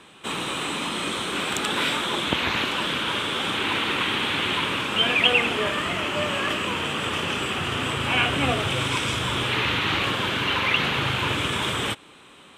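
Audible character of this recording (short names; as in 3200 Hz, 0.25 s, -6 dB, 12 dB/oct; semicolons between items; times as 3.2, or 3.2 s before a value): noise floor -49 dBFS; spectral tilt -3.0 dB/oct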